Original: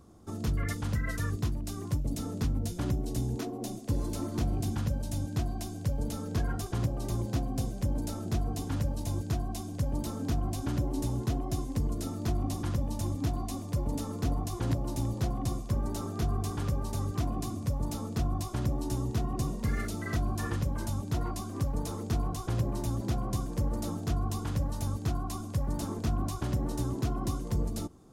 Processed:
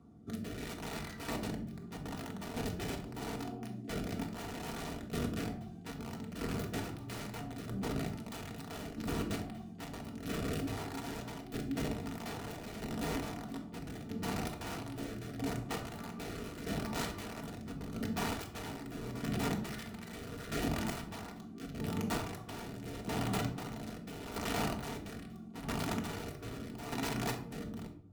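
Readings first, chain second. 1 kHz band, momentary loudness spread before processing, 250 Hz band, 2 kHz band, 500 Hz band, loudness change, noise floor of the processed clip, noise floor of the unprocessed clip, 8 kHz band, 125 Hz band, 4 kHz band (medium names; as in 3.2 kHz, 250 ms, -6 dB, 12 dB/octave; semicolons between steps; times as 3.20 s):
-2.5 dB, 2 LU, -4.5 dB, +1.5 dB, -2.5 dB, -7.0 dB, -48 dBFS, -39 dBFS, -5.0 dB, -11.5 dB, +0.5 dB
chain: tracing distortion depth 0.27 ms; high-pass 76 Hz 24 dB/octave; tone controls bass +4 dB, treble -11 dB; integer overflow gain 26.5 dB; rotary cabinet horn 0.8 Hz; comb of notches 540 Hz; square tremolo 0.78 Hz, depth 60%, duty 30%; simulated room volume 750 m³, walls furnished, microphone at 1.7 m; trim -2 dB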